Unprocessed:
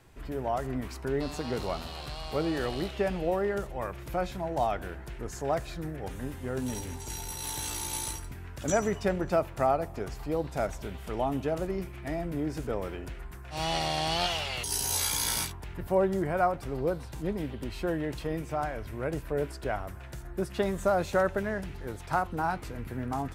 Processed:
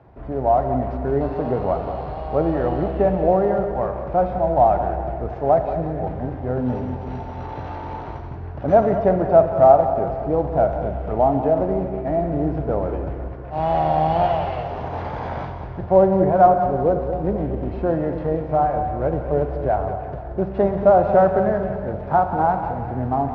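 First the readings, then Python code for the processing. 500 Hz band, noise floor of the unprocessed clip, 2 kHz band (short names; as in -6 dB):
+12.5 dB, -43 dBFS, +0.5 dB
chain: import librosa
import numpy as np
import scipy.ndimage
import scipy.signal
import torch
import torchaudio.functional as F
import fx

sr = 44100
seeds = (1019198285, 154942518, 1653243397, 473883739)

p1 = fx.cvsd(x, sr, bps=32000)
p2 = scipy.signal.sosfilt(scipy.signal.butter(2, 62.0, 'highpass', fs=sr, output='sos'), p1)
p3 = fx.peak_eq(p2, sr, hz=700.0, db=11.0, octaves=1.0)
p4 = fx.echo_split(p3, sr, split_hz=690.0, low_ms=235, high_ms=179, feedback_pct=52, wet_db=-10.0)
p5 = fx.quant_float(p4, sr, bits=2)
p6 = p4 + F.gain(torch.from_numpy(p5), -4.0).numpy()
p7 = scipy.signal.sosfilt(scipy.signal.butter(2, 1400.0, 'lowpass', fs=sr, output='sos'), p6)
p8 = fx.low_shelf(p7, sr, hz=270.0, db=8.5)
p9 = fx.rev_schroeder(p8, sr, rt60_s=1.3, comb_ms=32, drr_db=8.5)
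y = F.gain(torch.from_numpy(p9), -1.5).numpy()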